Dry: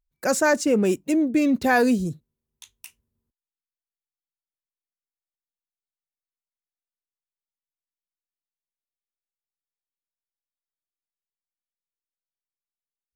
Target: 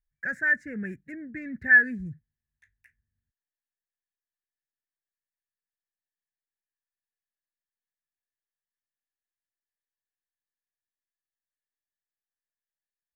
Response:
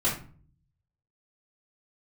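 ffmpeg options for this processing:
-af "firequalizer=gain_entry='entry(110,0);entry(310,-17);entry(1100,-27);entry(1700,13);entry(2900,-30)':delay=0.05:min_phase=1,volume=-3dB"

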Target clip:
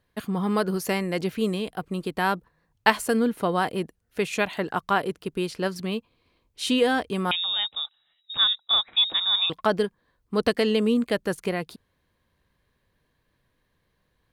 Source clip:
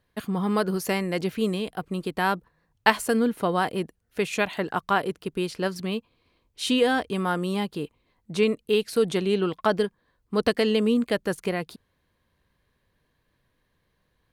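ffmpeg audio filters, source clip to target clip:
-filter_complex "[0:a]asettb=1/sr,asplit=3[a][b][c];[a]atrim=end=7.314[d];[b]atrim=start=7.31:end=9.5,asetpts=PTS-STARTPTS,afade=t=in:d=0.004:c=qsin,afade=t=out:st=2.186:d=0.004:c=qsin,lowpass=f=3.3k:t=q:w=0.5098,lowpass=f=3.3k:t=q:w=0.6013,lowpass=f=3.3k:t=q:w=0.9,lowpass=f=3.3k:t=q:w=2.563,afreqshift=-3900[e];[c]atrim=start=9.496[f];[d][e]acrossfade=d=0.004:c1=hsin:c2=qsin[g];[g][f]acrossfade=d=0.004:c1=qsin:c2=hsin"

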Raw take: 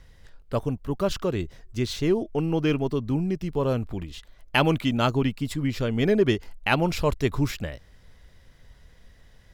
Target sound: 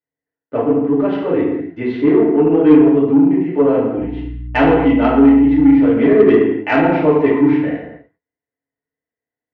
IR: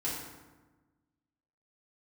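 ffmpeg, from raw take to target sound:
-filter_complex "[0:a]highpass=210,equalizer=f=280:t=q:w=4:g=8,equalizer=f=430:t=q:w=4:g=7,equalizer=f=670:t=q:w=4:g=8,equalizer=f=1.9k:t=q:w=4:g=6,lowpass=f=2.5k:w=0.5412,lowpass=f=2.5k:w=1.3066,agate=range=-39dB:threshold=-47dB:ratio=16:detection=peak,asettb=1/sr,asplit=3[a][b][c];[a]atrim=end=3.974[d];[b]atrim=start=3.97:end=5.7,asetpts=PTS-STARTPTS,afade=t=in:d=0.004:c=qsin,afade=t=out:st=1.726:d=0.004:c=qsin,aeval=exprs='val(0)+0.0141*(sin(2*PI*60*n/s)+sin(2*PI*2*60*n/s)/2+sin(2*PI*3*60*n/s)/3+sin(2*PI*4*60*n/s)/4+sin(2*PI*5*60*n/s)/5)':c=same[e];[c]atrim=start=5.696[f];[d][e]acrossfade=d=0.004:c1=hsin:c2=qsin[g];[g][f]acrossfade=d=0.004:c1=qsin:c2=hsin[h];[1:a]atrim=start_sample=2205,afade=t=out:st=0.36:d=0.01,atrim=end_sample=16317[i];[h][i]afir=irnorm=-1:irlink=0,asplit=2[j][k];[k]acontrast=60,volume=0.5dB[l];[j][l]amix=inputs=2:normalize=0,volume=-8dB"

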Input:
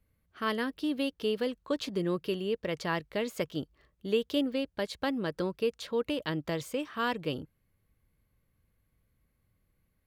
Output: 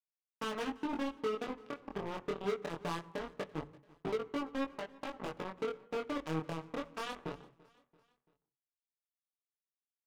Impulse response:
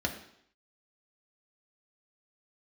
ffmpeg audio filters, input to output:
-filter_complex "[0:a]lowpass=1.3k,bandreject=f=50:t=h:w=6,bandreject=f=100:t=h:w=6,bandreject=f=150:t=h:w=6,bandreject=f=200:t=h:w=6,bandreject=f=250:t=h:w=6,bandreject=f=300:t=h:w=6,bandreject=f=350:t=h:w=6,bandreject=f=400:t=h:w=6,bandreject=f=450:t=h:w=6,bandreject=f=500:t=h:w=6,aecho=1:1:6.9:0.67,acompressor=threshold=-36dB:ratio=5,alimiter=level_in=9.5dB:limit=-24dB:level=0:latency=1:release=357,volume=-9.5dB,asoftclip=type=hard:threshold=-37dB,acrusher=bits=5:mix=0:aa=0.5,flanger=delay=18:depth=7.2:speed=0.23,aecho=1:1:338|676|1014:0.0708|0.0354|0.0177,asplit=2[a][b];[1:a]atrim=start_sample=2205,atrim=end_sample=6174,asetrate=27783,aresample=44100[c];[b][c]afir=irnorm=-1:irlink=0,volume=-19dB[d];[a][d]amix=inputs=2:normalize=0,volume=13dB"

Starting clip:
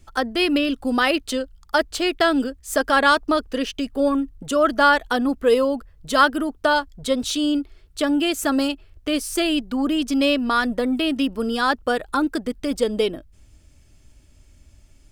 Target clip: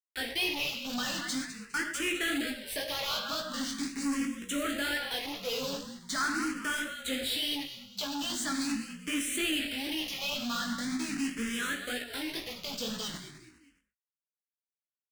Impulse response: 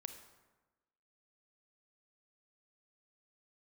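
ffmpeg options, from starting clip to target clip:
-filter_complex "[0:a]asettb=1/sr,asplit=3[a][b][c];[a]atrim=end=9.864[d];[b]atrim=start=9.86:end=12.31,asetpts=PTS-STARTPTS,afade=t=in:d=0.004:c=qsin,afade=t=out:st=2.446:d=0.004:c=qsin,acompressor=threshold=-25dB:ratio=1.5[e];[c]atrim=start=12.306[f];[d][e]acrossfade=d=0.004:c1=hsin:c2=qsin[g];[g][f]acrossfade=d=0.004:c1=qsin:c2=hsin,bandreject=f=50:t=h:w=6,bandreject=f=100:t=h:w=6,bandreject=f=150:t=h:w=6,bandreject=f=200:t=h:w=6,bandreject=f=250:t=h:w=6,bandreject=f=300:t=h:w=6,bandreject=f=350:t=h:w=6,acrusher=bits=4:mix=0:aa=0.000001,equalizer=f=125:t=o:w=1:g=-3,equalizer=f=250:t=o:w=1:g=4,equalizer=f=500:t=o:w=1:g=-6,equalizer=f=1k:t=o:w=1:g=-7,equalizer=f=2k:t=o:w=1:g=9,equalizer=f=4k:t=o:w=1:g=6,equalizer=f=8k:t=o:w=1:g=5,asplit=4[h][i][j][k];[i]adelay=204,afreqshift=-46,volume=-12.5dB[l];[j]adelay=408,afreqshift=-92,volume=-22.7dB[m];[k]adelay=612,afreqshift=-138,volume=-32.8dB[n];[h][l][m][n]amix=inputs=4:normalize=0[o];[1:a]atrim=start_sample=2205,afade=t=out:st=0.21:d=0.01,atrim=end_sample=9702,asetrate=48510,aresample=44100[p];[o][p]afir=irnorm=-1:irlink=0,flanger=delay=16:depth=6.1:speed=2,asoftclip=type=hard:threshold=-26dB,asplit=2[q][r];[r]afreqshift=0.42[s];[q][s]amix=inputs=2:normalize=1"

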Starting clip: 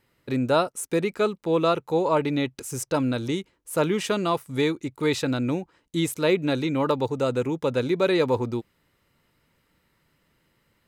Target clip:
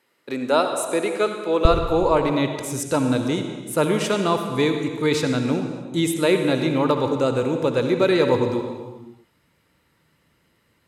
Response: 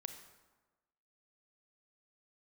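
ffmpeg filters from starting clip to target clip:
-filter_complex "[0:a]asetnsamples=n=441:p=0,asendcmd='1.65 highpass f 52',highpass=320[a];[1:a]atrim=start_sample=2205,afade=t=out:st=0.4:d=0.01,atrim=end_sample=18081,asetrate=24255,aresample=44100[b];[a][b]afir=irnorm=-1:irlink=0,volume=3.5dB"

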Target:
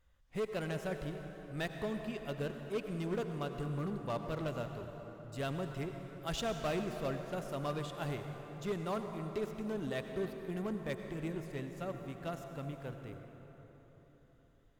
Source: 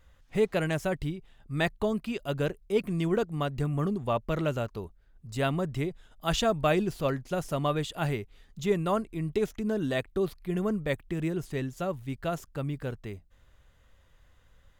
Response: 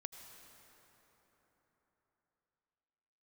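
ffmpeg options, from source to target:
-filter_complex "[0:a]aeval=exprs='0.224*(cos(1*acos(clip(val(0)/0.224,-1,1)))-cos(1*PI/2))+0.0141*(cos(7*acos(clip(val(0)/0.224,-1,1)))-cos(7*PI/2))':c=same,volume=24dB,asoftclip=hard,volume=-24dB[a];[1:a]atrim=start_sample=2205[b];[a][b]afir=irnorm=-1:irlink=0,volume=-2dB"

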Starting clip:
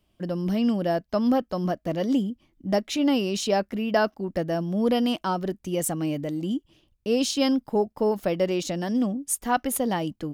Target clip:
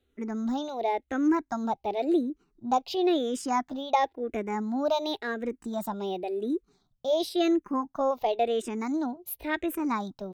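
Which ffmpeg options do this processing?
-filter_complex "[0:a]bass=f=250:g=-2,treble=f=4k:g=-8,asetrate=55563,aresample=44100,atempo=0.793701,asplit=2[a][b];[b]afreqshift=-0.94[c];[a][c]amix=inputs=2:normalize=1"

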